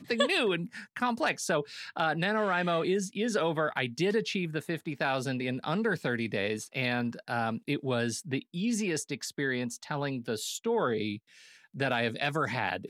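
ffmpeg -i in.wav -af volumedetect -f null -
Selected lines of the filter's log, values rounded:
mean_volume: -31.1 dB
max_volume: -12.1 dB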